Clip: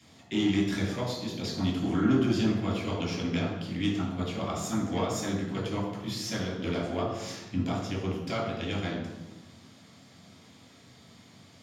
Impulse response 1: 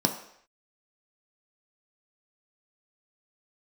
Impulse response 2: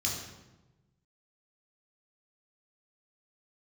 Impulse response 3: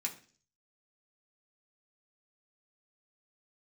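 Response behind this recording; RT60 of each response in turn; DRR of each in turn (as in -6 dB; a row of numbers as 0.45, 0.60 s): 2; not exponential, 1.1 s, 0.45 s; 3.5, -3.0, -2.0 dB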